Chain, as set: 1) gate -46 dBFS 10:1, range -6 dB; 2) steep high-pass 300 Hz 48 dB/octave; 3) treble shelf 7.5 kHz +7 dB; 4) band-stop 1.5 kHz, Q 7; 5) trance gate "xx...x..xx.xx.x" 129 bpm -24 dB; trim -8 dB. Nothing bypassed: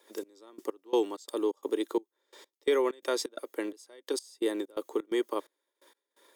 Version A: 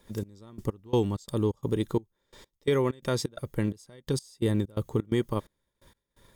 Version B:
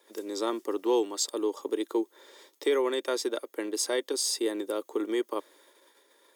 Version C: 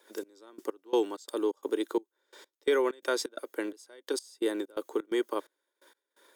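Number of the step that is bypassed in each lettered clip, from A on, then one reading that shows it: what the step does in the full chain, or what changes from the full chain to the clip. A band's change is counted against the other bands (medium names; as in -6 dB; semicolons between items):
2, 250 Hz band +4.5 dB; 5, 8 kHz band +9.0 dB; 4, 2 kHz band +3.5 dB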